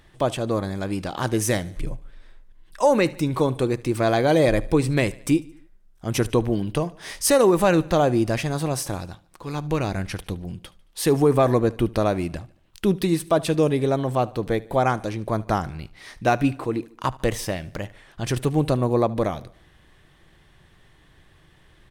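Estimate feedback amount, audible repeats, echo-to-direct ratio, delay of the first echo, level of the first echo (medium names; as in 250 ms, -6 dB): 50%, 3, -20.5 dB, 74 ms, -21.5 dB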